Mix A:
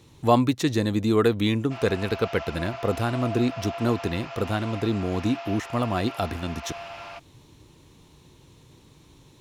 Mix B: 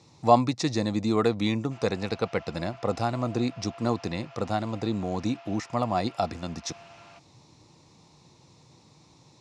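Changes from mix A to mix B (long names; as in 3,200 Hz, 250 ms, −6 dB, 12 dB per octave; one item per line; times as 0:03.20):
speech: add loudspeaker in its box 130–7,600 Hz, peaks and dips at 270 Hz −5 dB, 400 Hz −7 dB, 760 Hz +5 dB, 1,600 Hz −8 dB, 3,100 Hz −10 dB, 5,000 Hz +7 dB
background −11.5 dB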